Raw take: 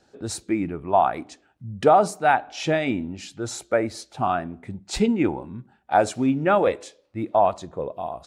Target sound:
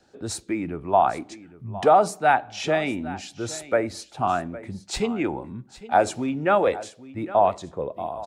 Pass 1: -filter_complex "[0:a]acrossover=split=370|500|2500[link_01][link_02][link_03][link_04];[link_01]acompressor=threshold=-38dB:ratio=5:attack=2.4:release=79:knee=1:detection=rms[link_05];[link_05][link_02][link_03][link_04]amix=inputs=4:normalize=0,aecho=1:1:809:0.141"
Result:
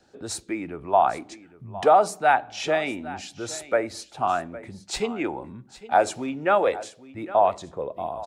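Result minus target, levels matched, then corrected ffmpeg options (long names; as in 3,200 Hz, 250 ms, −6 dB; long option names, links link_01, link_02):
downward compressor: peak gain reduction +8 dB
-filter_complex "[0:a]acrossover=split=370|500|2500[link_01][link_02][link_03][link_04];[link_01]acompressor=threshold=-28dB:ratio=5:attack=2.4:release=79:knee=1:detection=rms[link_05];[link_05][link_02][link_03][link_04]amix=inputs=4:normalize=0,aecho=1:1:809:0.141"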